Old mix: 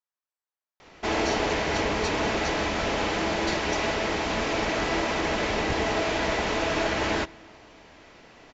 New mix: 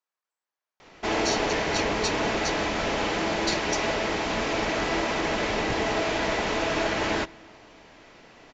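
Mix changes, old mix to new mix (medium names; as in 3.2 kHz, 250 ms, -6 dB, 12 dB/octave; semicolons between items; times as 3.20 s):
speech +7.0 dB; master: add peaking EQ 68 Hz -7 dB 0.45 oct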